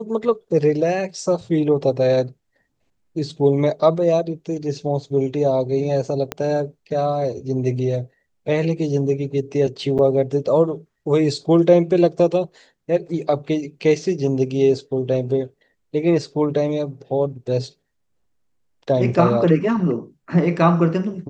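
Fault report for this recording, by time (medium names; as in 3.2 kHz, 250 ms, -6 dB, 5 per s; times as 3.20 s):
6.32 s: pop -9 dBFS
9.98–9.99 s: dropout 8.2 ms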